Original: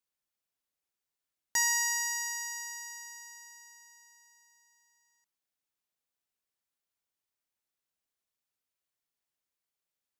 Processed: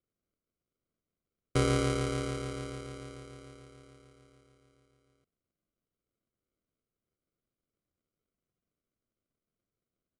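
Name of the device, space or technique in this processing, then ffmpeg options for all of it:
crushed at another speed: -af "asetrate=88200,aresample=44100,acrusher=samples=25:mix=1:aa=0.000001,asetrate=22050,aresample=44100,volume=1.19"

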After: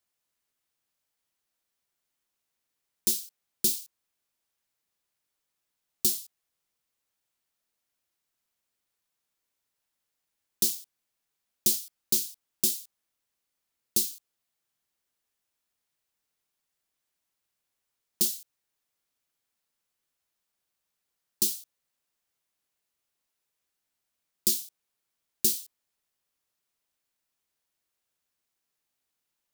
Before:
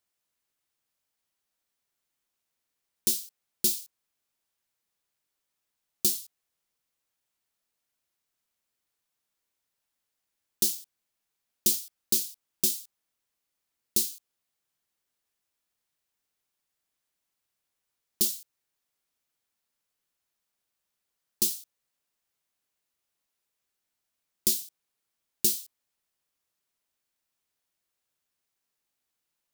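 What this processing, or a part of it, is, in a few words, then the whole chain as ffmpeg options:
one-band saturation: -filter_complex "[0:a]acrossover=split=370|3400[s0][s1][s2];[s1]asoftclip=type=tanh:threshold=0.0224[s3];[s0][s3][s2]amix=inputs=3:normalize=0"

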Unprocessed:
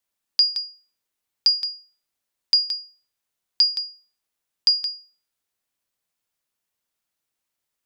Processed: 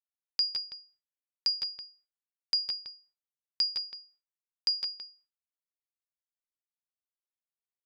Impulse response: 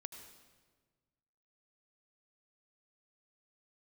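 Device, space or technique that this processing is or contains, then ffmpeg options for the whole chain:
hearing-loss simulation: -filter_complex "[0:a]lowpass=2800,agate=range=0.0224:threshold=0.002:ratio=3:detection=peak,asettb=1/sr,asplit=3[s0][s1][s2];[s0]atrim=end=3.764[s3];[s1]atrim=start=3.76:end=4.93,asetpts=PTS-STARTPTS,afade=t=in:d=0.004:c=qsin,afade=t=out:st=1.166:d=0.004:c=qsin,highpass=160[s4];[s2]atrim=start=4.926[s5];[s3][s4]acrossfade=d=0.004:c1=hsin:c2=qsin[s6];[s6][s5]acrossfade=d=0.004:c1=qsin:c2=hsin,aecho=1:1:158:0.447"

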